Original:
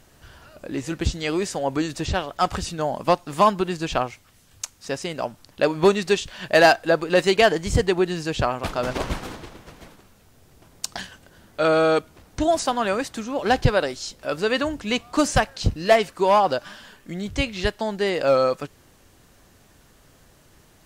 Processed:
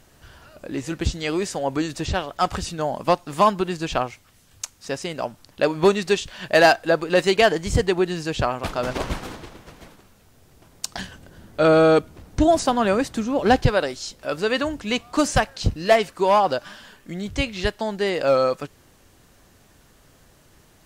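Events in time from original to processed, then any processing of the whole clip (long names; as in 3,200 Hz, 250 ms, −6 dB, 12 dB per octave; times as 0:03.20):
0:10.98–0:13.56: low-shelf EQ 470 Hz +8 dB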